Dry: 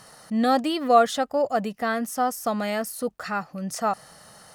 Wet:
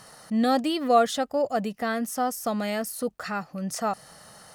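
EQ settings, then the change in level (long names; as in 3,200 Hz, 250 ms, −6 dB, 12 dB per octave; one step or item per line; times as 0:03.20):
dynamic equaliser 1,100 Hz, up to −4 dB, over −34 dBFS, Q 0.77
0.0 dB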